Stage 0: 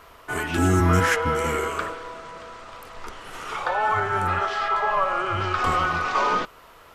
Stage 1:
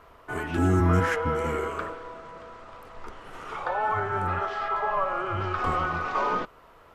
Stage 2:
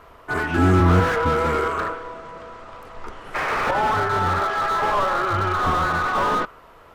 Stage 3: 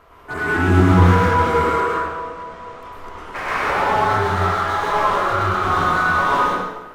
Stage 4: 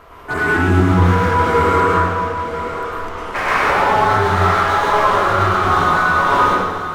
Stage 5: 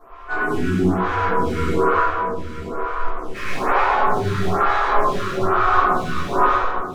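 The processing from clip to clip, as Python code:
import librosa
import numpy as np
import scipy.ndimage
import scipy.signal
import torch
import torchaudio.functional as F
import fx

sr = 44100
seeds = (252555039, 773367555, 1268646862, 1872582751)

y1 = fx.high_shelf(x, sr, hz=2200.0, db=-11.5)
y1 = F.gain(torch.from_numpy(y1), -2.0).numpy()
y2 = fx.spec_paint(y1, sr, seeds[0], shape='noise', start_s=3.34, length_s=0.37, low_hz=370.0, high_hz=2600.0, level_db=-31.0)
y2 = fx.dynamic_eq(y2, sr, hz=1400.0, q=1.2, threshold_db=-41.0, ratio=4.0, max_db=6)
y2 = fx.slew_limit(y2, sr, full_power_hz=65.0)
y2 = F.gain(torch.from_numpy(y2), 5.5).numpy()
y3 = fx.rev_plate(y2, sr, seeds[1], rt60_s=1.1, hf_ratio=0.8, predelay_ms=90, drr_db=-5.5)
y3 = F.gain(torch.from_numpy(y3), -3.5).numpy()
y4 = fx.rider(y3, sr, range_db=4, speed_s=0.5)
y4 = y4 + 10.0 ** (-10.5 / 20.0) * np.pad(y4, (int(983 * sr / 1000.0), 0))[:len(y4)]
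y4 = F.gain(torch.from_numpy(y4), 3.0).numpy()
y5 = fx.tracing_dist(y4, sr, depth_ms=0.028)
y5 = fx.room_shoebox(y5, sr, seeds[2], volume_m3=160.0, walls='furnished', distance_m=3.5)
y5 = fx.stagger_phaser(y5, sr, hz=1.1)
y5 = F.gain(torch.from_numpy(y5), -9.5).numpy()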